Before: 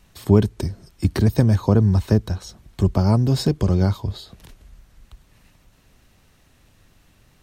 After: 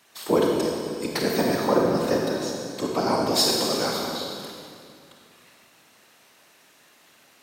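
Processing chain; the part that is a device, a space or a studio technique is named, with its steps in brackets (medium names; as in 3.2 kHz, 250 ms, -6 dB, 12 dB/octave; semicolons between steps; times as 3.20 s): 3.33–4.07 s: tilt EQ +2 dB/octave; whispering ghost (whisper effect; high-pass 510 Hz 12 dB/octave; reverberation RT60 2.3 s, pre-delay 28 ms, DRR -1 dB); trim +2.5 dB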